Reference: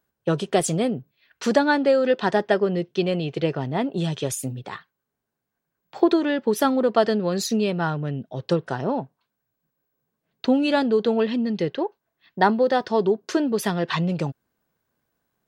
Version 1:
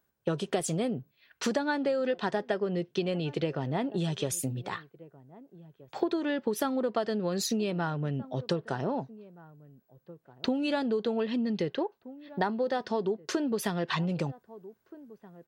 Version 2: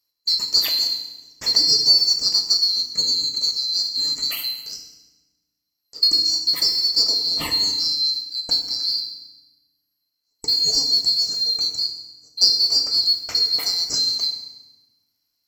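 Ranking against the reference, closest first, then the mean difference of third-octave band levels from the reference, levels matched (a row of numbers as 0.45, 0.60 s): 1, 2; 2.5, 17.0 dB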